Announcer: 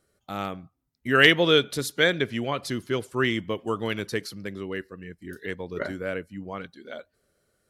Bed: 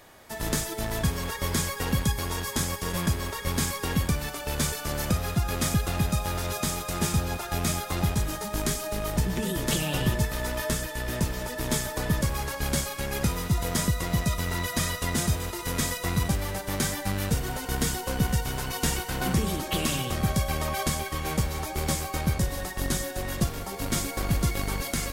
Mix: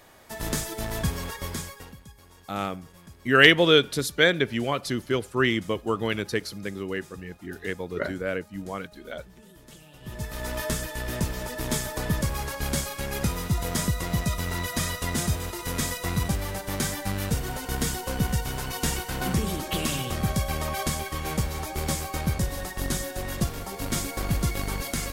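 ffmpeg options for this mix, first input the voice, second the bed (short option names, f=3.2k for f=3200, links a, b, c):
-filter_complex "[0:a]adelay=2200,volume=1.5dB[a];[1:a]volume=21dB,afade=t=out:st=1.14:d=0.82:silence=0.0841395,afade=t=in:st=10.01:d=0.56:silence=0.0794328[b];[a][b]amix=inputs=2:normalize=0"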